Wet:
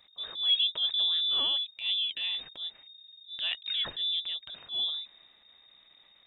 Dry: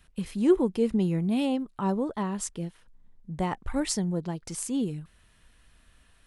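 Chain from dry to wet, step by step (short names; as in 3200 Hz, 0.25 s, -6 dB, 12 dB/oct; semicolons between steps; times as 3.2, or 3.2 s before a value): inverted band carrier 3700 Hz; transient shaper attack -9 dB, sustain +3 dB; gain -2 dB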